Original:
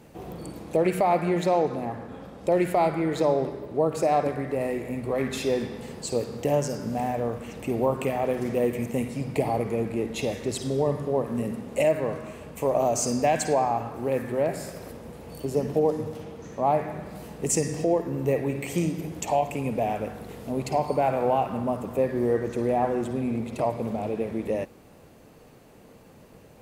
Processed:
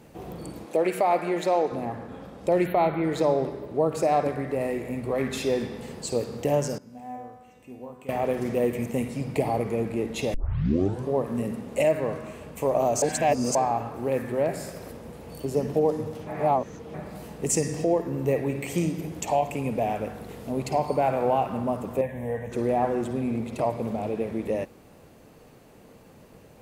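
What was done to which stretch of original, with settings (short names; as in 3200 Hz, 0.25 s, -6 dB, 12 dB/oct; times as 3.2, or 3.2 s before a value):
0.65–1.72 HPF 290 Hz
2.67–3.04 spectral delete 4400–11000 Hz
6.78–8.09 resonator 250 Hz, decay 1.2 s, mix 90%
10.34 tape start 0.76 s
13.02–13.55 reverse
16.27–16.94 reverse
22.01–22.52 fixed phaser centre 1300 Hz, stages 6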